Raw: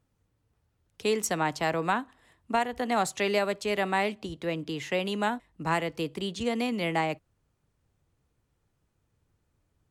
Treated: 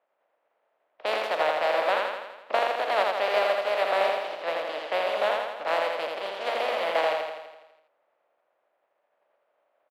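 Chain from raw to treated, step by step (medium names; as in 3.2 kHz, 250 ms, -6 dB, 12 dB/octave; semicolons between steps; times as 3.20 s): spectral contrast reduction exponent 0.24; level-controlled noise filter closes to 2.3 kHz, open at -27.5 dBFS; resonant high-pass 600 Hz, resonance Q 4.9; distance through air 380 m; feedback delay 83 ms, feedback 59%, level -3 dB; trim +1.5 dB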